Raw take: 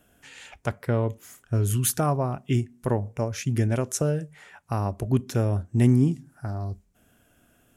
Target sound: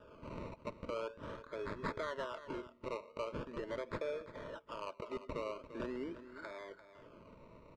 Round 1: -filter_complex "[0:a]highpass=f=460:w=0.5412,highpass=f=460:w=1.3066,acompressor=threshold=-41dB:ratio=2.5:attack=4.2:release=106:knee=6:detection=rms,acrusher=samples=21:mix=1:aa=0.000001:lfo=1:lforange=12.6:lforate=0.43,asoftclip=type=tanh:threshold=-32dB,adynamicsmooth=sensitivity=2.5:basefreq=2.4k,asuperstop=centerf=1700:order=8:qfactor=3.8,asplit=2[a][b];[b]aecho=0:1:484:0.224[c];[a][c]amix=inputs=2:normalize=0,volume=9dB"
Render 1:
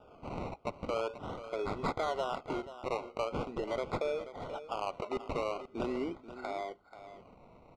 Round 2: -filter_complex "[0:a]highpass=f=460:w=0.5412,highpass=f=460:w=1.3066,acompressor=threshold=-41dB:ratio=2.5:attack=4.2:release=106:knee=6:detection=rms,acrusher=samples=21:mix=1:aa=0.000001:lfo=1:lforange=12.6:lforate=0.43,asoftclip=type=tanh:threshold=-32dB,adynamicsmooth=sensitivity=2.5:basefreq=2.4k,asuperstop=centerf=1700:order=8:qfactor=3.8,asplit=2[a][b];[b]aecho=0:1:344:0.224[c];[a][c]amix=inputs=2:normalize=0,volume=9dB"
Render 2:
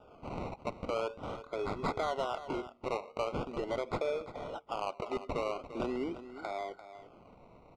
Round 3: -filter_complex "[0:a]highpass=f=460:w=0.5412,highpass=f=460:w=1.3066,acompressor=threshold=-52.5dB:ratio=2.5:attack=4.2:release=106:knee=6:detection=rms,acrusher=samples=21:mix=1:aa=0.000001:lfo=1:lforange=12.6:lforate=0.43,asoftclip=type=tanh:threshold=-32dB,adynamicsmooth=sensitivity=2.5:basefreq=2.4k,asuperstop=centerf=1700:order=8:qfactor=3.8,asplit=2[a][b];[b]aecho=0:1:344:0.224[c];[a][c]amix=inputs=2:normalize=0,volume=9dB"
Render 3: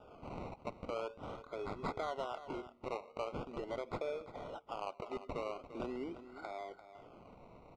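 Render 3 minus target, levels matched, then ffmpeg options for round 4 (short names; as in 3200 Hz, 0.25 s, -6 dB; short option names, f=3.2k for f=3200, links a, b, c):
2000 Hz band -3.5 dB
-filter_complex "[0:a]highpass=f=460:w=0.5412,highpass=f=460:w=1.3066,acompressor=threshold=-52.5dB:ratio=2.5:attack=4.2:release=106:knee=6:detection=rms,acrusher=samples=21:mix=1:aa=0.000001:lfo=1:lforange=12.6:lforate=0.43,asoftclip=type=tanh:threshold=-32dB,adynamicsmooth=sensitivity=2.5:basefreq=2.4k,asuperstop=centerf=760:order=8:qfactor=3.8,asplit=2[a][b];[b]aecho=0:1:344:0.224[c];[a][c]amix=inputs=2:normalize=0,volume=9dB"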